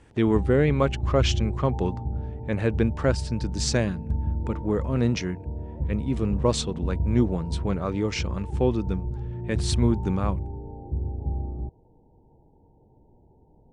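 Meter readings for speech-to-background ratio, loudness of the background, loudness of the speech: 5.0 dB, -31.5 LUFS, -26.5 LUFS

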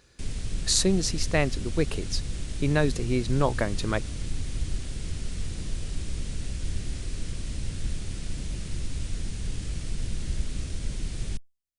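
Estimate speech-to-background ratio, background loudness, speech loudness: 8.5 dB, -35.5 LUFS, -27.0 LUFS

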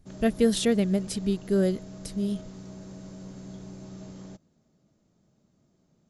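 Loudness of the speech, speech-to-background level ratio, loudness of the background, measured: -26.5 LUFS, 17.0 dB, -43.5 LUFS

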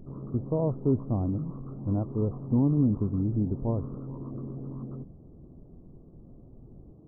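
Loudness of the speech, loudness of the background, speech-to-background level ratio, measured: -29.0 LUFS, -40.0 LUFS, 11.0 dB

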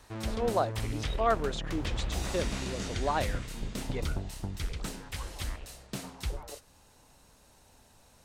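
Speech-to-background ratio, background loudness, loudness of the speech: 2.5 dB, -37.0 LUFS, -34.5 LUFS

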